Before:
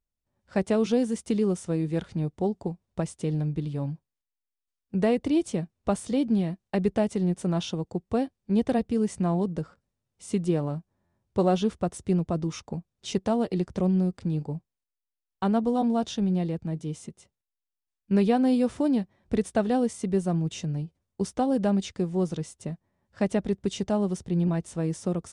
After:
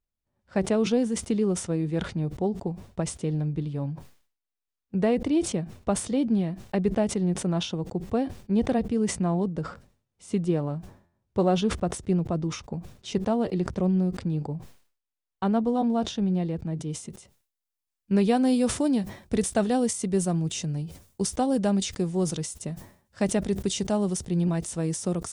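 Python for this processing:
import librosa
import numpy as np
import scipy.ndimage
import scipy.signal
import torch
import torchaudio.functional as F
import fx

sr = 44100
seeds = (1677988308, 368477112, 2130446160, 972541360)

y = fx.high_shelf(x, sr, hz=5100.0, db=fx.steps((0.0, -5.5), (16.89, 4.5), (18.27, 12.0)))
y = fx.sustainer(y, sr, db_per_s=120.0)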